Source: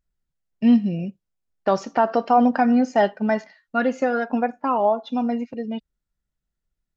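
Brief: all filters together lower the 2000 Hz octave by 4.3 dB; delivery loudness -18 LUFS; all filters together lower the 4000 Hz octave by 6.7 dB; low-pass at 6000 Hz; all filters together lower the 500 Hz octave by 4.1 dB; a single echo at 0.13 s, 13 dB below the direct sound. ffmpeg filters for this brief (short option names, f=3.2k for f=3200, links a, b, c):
-af "lowpass=6k,equalizer=f=500:t=o:g=-5,equalizer=f=2k:t=o:g=-4.5,equalizer=f=4k:t=o:g=-7,aecho=1:1:130:0.224,volume=5.5dB"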